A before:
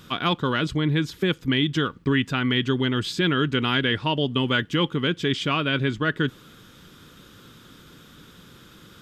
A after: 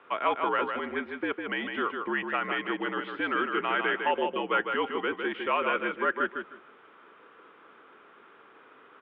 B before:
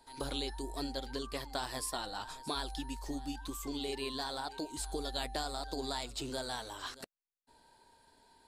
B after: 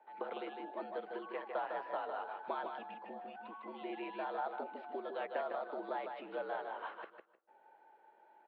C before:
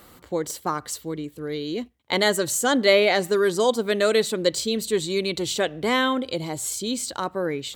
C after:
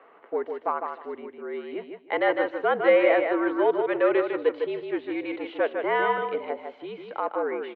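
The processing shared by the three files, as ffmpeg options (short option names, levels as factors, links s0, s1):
-filter_complex "[0:a]aeval=exprs='0.562*(cos(1*acos(clip(val(0)/0.562,-1,1)))-cos(1*PI/2))+0.141*(cos(2*acos(clip(val(0)/0.562,-1,1)))-cos(2*PI/2))+0.0708*(cos(4*acos(clip(val(0)/0.562,-1,1)))-cos(4*PI/2))+0.0447*(cos(5*acos(clip(val(0)/0.562,-1,1)))-cos(5*PI/2))':c=same,asplit=2[s0][s1];[s1]aecho=0:1:154|308|462:0.531|0.106|0.0212[s2];[s0][s2]amix=inputs=2:normalize=0,highpass=f=530:t=q:w=0.5412,highpass=f=530:t=q:w=1.307,lowpass=f=2600:t=q:w=0.5176,lowpass=f=2600:t=q:w=0.7071,lowpass=f=2600:t=q:w=1.932,afreqshift=-61,tiltshelf=f=910:g=5,asplit=2[s3][s4];[s4]adelay=170,lowpass=f=1100:p=1,volume=0.0708,asplit=2[s5][s6];[s6]adelay=170,lowpass=f=1100:p=1,volume=0.48,asplit=2[s7][s8];[s8]adelay=170,lowpass=f=1100:p=1,volume=0.48[s9];[s5][s7][s9]amix=inputs=3:normalize=0[s10];[s3][s10]amix=inputs=2:normalize=0,volume=0.794"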